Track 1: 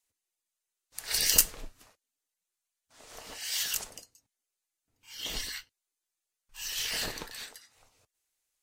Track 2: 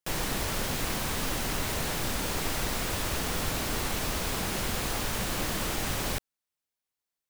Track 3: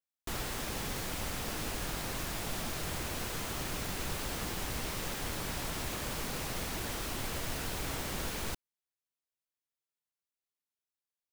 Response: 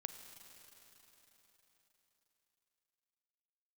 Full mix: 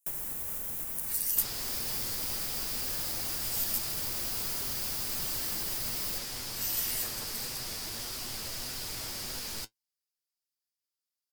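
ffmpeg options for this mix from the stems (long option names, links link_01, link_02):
-filter_complex "[0:a]asplit=2[link_01][link_02];[link_02]adelay=10.6,afreqshift=-0.56[link_03];[link_01][link_03]amix=inputs=2:normalize=1,volume=-3.5dB[link_04];[1:a]volume=-11dB[link_05];[2:a]aemphasis=mode=reproduction:type=cd,flanger=delay=7.7:depth=1.8:regen=52:speed=1.7:shape=triangular,equalizer=frequency=4900:width_type=o:width=0.33:gain=10,adelay=1100,volume=-3.5dB[link_06];[link_04][link_05]amix=inputs=2:normalize=0,equalizer=frequency=4400:width=0.77:gain=-13.5,acompressor=threshold=-45dB:ratio=6,volume=0dB[link_07];[link_06][link_07]amix=inputs=2:normalize=0,highshelf=frequency=3900:gain=5.5,crystalizer=i=3:c=0"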